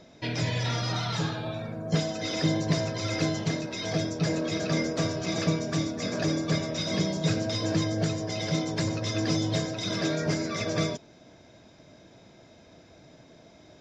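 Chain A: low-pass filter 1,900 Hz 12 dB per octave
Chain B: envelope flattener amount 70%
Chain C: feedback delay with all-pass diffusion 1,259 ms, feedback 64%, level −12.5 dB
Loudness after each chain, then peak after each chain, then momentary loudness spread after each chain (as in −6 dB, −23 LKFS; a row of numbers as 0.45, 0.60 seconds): −30.0, −24.5, −29.0 LKFS; −13.5, −11.0, −12.5 dBFS; 4, 8, 13 LU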